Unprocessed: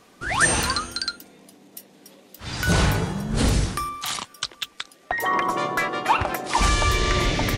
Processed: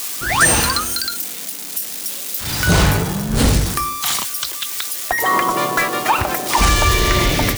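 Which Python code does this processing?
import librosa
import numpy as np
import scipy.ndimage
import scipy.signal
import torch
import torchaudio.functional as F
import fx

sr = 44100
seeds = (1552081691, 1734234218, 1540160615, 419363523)

y = x + 0.5 * 10.0 ** (-22.5 / 20.0) * np.diff(np.sign(x), prepend=np.sign(x[:1]))
y = fx.end_taper(y, sr, db_per_s=100.0)
y = F.gain(torch.from_numpy(y), 6.0).numpy()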